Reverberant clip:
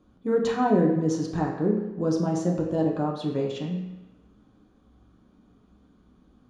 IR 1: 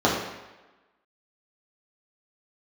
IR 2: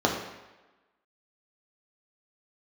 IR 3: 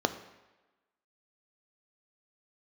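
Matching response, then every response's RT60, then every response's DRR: 2; 1.1 s, 1.1 s, 1.1 s; -6.0 dB, -1.5 dB, 8.5 dB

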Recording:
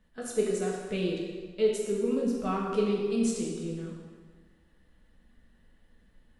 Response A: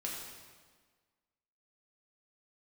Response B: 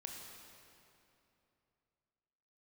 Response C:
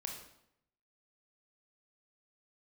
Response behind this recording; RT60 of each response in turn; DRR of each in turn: A; 1.5 s, 2.9 s, 0.75 s; -3.5 dB, 0.0 dB, 1.0 dB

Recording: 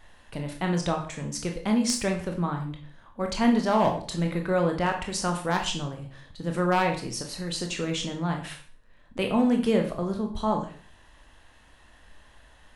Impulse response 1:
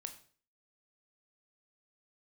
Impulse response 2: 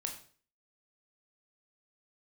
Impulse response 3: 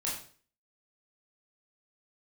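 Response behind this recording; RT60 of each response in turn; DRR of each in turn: 2; 0.45 s, 0.45 s, 0.45 s; 6.5 dB, 2.5 dB, -5.5 dB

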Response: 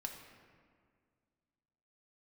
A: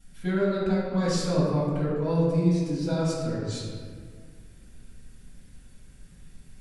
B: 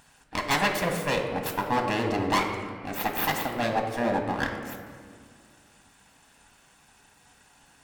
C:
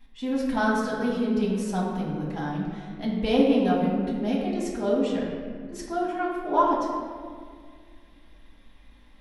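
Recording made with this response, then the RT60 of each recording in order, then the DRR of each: B; 1.9 s, 2.0 s, 1.9 s; -11.5 dB, 2.5 dB, -6.0 dB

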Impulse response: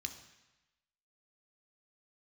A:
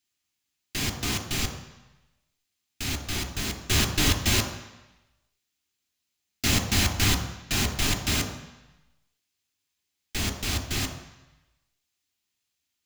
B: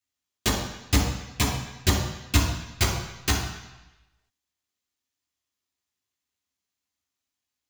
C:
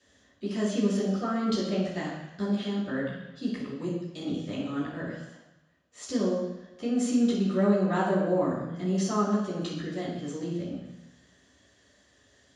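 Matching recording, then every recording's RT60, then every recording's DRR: A; 1.0 s, 1.0 s, 1.0 s; 5.0 dB, -4.0 dB, -11.5 dB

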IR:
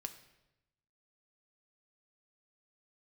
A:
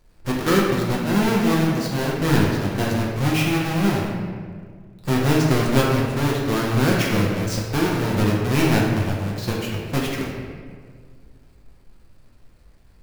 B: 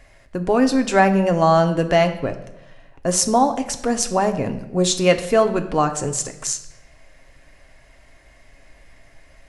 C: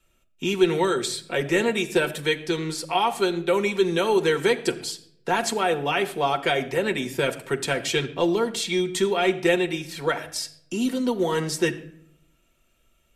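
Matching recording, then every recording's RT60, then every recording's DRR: B; 1.9 s, 0.95 s, 0.65 s; -4.0 dB, 6.0 dB, 3.0 dB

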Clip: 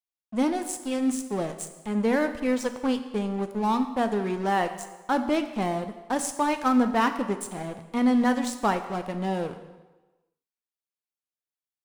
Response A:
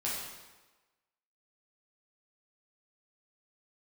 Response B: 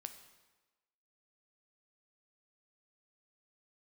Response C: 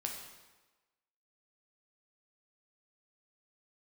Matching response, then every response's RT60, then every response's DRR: B; 1.2 s, 1.2 s, 1.2 s; -7.0 dB, 7.5 dB, 0.5 dB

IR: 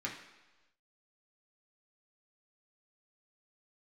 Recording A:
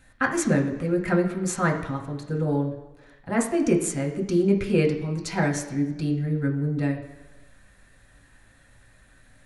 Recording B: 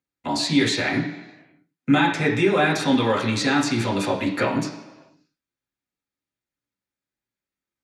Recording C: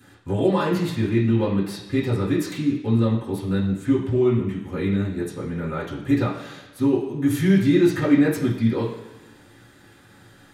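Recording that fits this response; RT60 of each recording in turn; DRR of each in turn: B; 1.1 s, 1.1 s, 1.1 s; 0.5 dB, -3.5 dB, -11.0 dB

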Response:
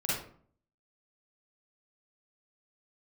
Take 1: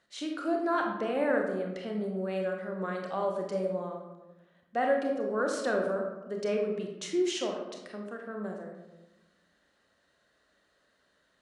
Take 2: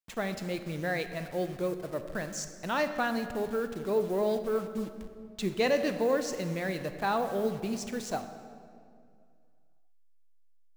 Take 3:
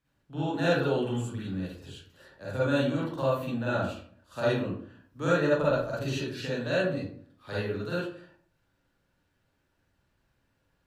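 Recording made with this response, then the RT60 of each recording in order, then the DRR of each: 3; 1.0 s, 2.4 s, 0.55 s; 1.0 dB, 8.0 dB, -8.5 dB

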